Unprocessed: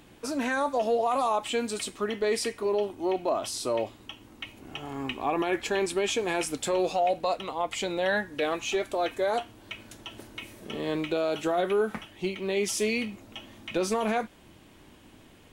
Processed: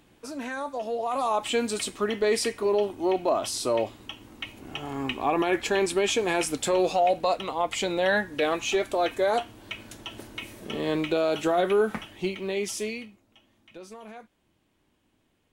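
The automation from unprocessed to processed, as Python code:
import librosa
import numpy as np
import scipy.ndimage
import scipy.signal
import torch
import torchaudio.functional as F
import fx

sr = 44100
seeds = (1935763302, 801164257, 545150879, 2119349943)

y = fx.gain(x, sr, db=fx.line((0.89, -5.5), (1.47, 3.0), (12.12, 3.0), (12.88, -4.5), (13.22, -16.5)))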